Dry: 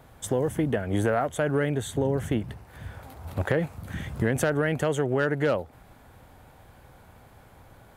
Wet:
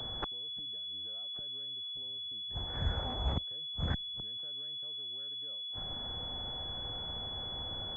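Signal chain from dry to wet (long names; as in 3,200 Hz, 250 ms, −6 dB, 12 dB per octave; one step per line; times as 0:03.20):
gate with flip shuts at −26 dBFS, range −42 dB
frequency shifter −18 Hz
switching amplifier with a slow clock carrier 3,400 Hz
level +6.5 dB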